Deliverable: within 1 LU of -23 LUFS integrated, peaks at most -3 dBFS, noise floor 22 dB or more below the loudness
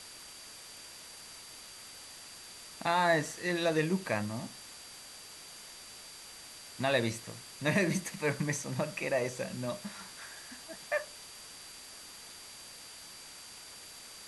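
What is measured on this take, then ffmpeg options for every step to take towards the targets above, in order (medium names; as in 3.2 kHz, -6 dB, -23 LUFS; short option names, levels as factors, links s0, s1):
steady tone 4.7 kHz; tone level -53 dBFS; noise floor -50 dBFS; noise floor target -55 dBFS; loudness -33.0 LUFS; peak level -15.5 dBFS; loudness target -23.0 LUFS
-> -af "bandreject=f=4700:w=30"
-af "afftdn=nr=6:nf=-50"
-af "volume=3.16"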